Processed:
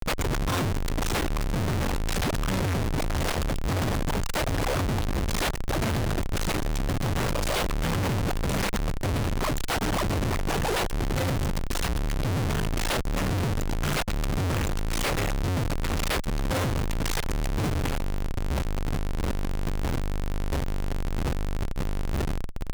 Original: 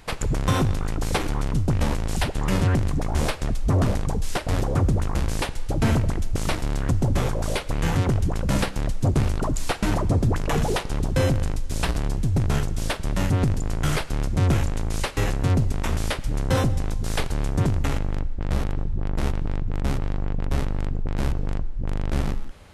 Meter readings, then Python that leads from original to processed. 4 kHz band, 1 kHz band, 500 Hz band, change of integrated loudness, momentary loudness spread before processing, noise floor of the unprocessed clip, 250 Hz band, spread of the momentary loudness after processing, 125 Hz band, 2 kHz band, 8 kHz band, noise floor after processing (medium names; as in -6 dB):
+1.0 dB, -0.5 dB, -1.5 dB, -3.0 dB, 6 LU, -31 dBFS, -3.5 dB, 4 LU, -5.0 dB, +0.5 dB, 0.0 dB, -28 dBFS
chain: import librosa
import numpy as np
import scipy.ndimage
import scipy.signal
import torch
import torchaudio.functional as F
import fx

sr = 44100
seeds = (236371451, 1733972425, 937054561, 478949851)

y = fx.schmitt(x, sr, flips_db=-39.5)
y = fx.tube_stage(y, sr, drive_db=32.0, bias=0.5)
y = y * librosa.db_to_amplitude(7.0)